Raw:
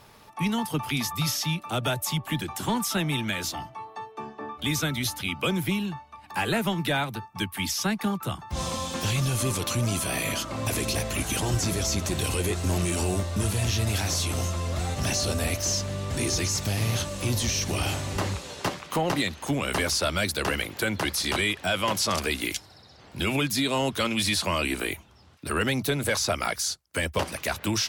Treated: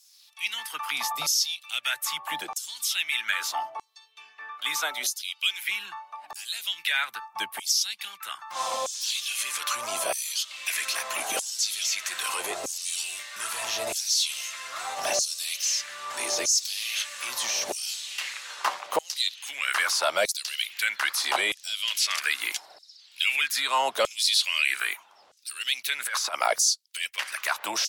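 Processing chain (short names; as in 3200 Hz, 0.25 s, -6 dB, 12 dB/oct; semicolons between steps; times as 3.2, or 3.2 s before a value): 4.78–5.68 HPF 410 Hz 12 dB/oct; 25.94–27.18 negative-ratio compressor -28 dBFS, ratio -0.5; LFO high-pass saw down 0.79 Hz 550–6600 Hz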